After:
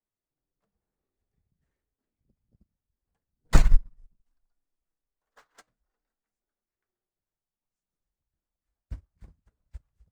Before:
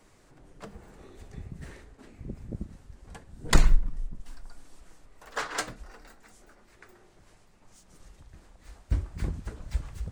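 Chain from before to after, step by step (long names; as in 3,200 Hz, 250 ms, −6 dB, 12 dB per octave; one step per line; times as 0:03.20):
dynamic equaliser 350 Hz, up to −5 dB, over −53 dBFS, Q 2
in parallel at −9.5 dB: sample-rate reduction 5,000 Hz
on the sum: expander for the loud parts 2.5 to 1, over −36 dBFS
level +2.5 dB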